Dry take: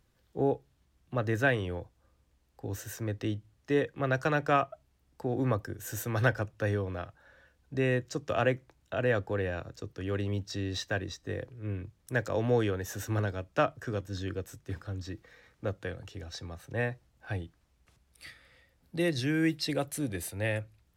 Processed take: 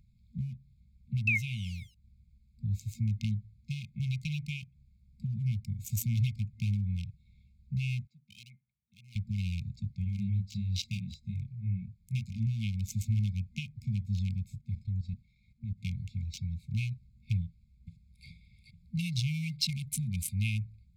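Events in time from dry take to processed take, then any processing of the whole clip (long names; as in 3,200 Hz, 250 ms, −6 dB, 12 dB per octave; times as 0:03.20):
0:01.27–0:01.95: sound drawn into the spectrogram fall 540–2,700 Hz −26 dBFS
0:08.07–0:09.16: pair of resonant band-passes 880 Hz, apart 0.95 octaves
0:10.04–0:12.47: chorus effect 1.4 Hz
0:14.58–0:15.78: output level in coarse steps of 13 dB
0:17.44–0:18.27: delay throw 430 ms, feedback 55%, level −4.5 dB
whole clip: adaptive Wiener filter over 15 samples; downward compressor, threshold −32 dBFS; brick-wall band-stop 230–2,100 Hz; level +8.5 dB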